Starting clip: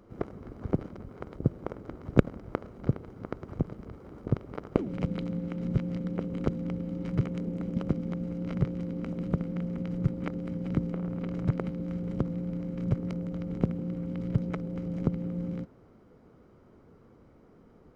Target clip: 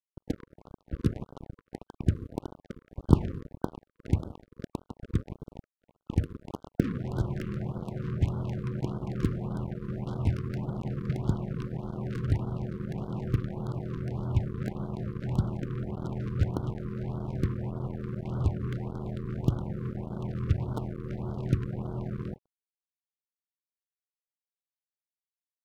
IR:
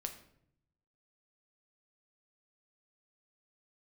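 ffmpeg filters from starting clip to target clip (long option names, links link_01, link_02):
-filter_complex "[0:a]asetrate=30870,aresample=44100,asplit=2[link_01][link_02];[1:a]atrim=start_sample=2205[link_03];[link_02][link_03]afir=irnorm=-1:irlink=0,volume=-0.5dB[link_04];[link_01][link_04]amix=inputs=2:normalize=0,acrusher=bits=4:mix=0:aa=0.5,afftfilt=real='re*(1-between(b*sr/1024,700*pow(2200/700,0.5+0.5*sin(2*PI*1.7*pts/sr))/1.41,700*pow(2200/700,0.5+0.5*sin(2*PI*1.7*pts/sr))*1.41))':imag='im*(1-between(b*sr/1024,700*pow(2200/700,0.5+0.5*sin(2*PI*1.7*pts/sr))/1.41,700*pow(2200/700,0.5+0.5*sin(2*PI*1.7*pts/sr))*1.41))':win_size=1024:overlap=0.75,volume=-4.5dB"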